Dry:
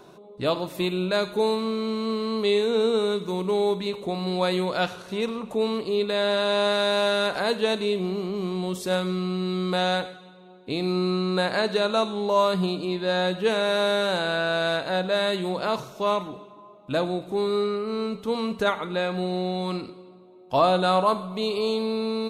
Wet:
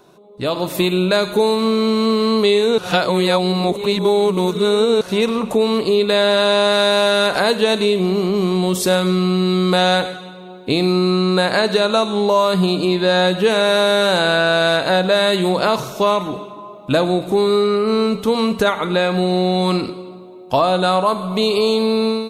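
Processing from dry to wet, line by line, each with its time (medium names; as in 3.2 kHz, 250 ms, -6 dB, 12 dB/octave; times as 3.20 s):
2.78–5.01 s: reverse
whole clip: compression 3:1, threshold -26 dBFS; treble shelf 6.8 kHz +5 dB; level rider gain up to 15.5 dB; trim -1.5 dB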